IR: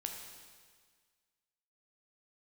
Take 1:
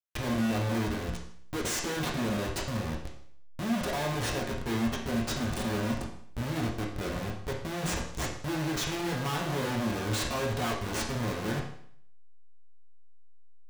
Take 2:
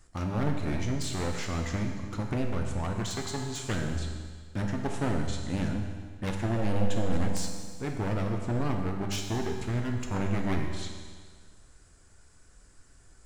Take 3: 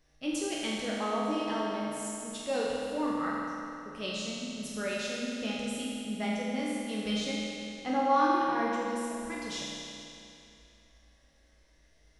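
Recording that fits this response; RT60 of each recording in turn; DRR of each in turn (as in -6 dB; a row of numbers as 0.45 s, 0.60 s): 2; 0.60 s, 1.7 s, 2.8 s; -2.5 dB, 2.0 dB, -6.5 dB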